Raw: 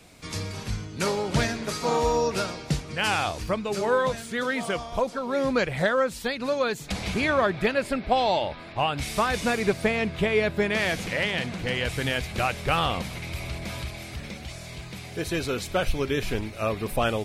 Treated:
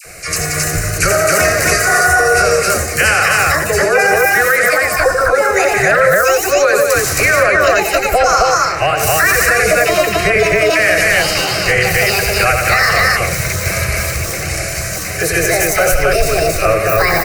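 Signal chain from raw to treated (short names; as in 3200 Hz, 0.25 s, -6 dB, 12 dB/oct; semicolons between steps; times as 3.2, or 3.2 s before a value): trilling pitch shifter +7.5 st, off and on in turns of 0.358 s; in parallel at +3 dB: compressor, threshold -33 dBFS, peak gain reduction 15 dB; on the sum: tilt shelf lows -4 dB, about 870 Hz; fixed phaser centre 930 Hz, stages 6; dispersion lows, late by 51 ms, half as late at 1100 Hz; on a send: loudspeakers at several distances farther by 30 m -6 dB, 61 m -9 dB, 92 m -1 dB; on the sum: maximiser +13.5 dB; gain -1 dB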